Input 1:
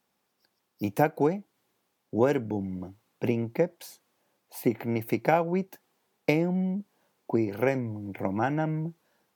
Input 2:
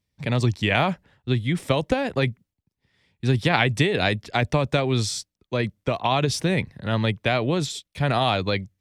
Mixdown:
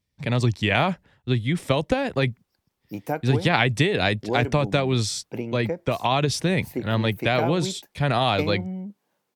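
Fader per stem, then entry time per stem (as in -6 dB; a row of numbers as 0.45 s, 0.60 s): -4.0 dB, 0.0 dB; 2.10 s, 0.00 s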